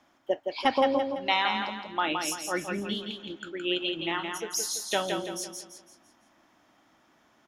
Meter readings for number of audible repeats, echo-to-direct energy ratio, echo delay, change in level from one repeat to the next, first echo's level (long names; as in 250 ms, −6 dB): 4, −4.0 dB, 168 ms, −8.0 dB, −5.0 dB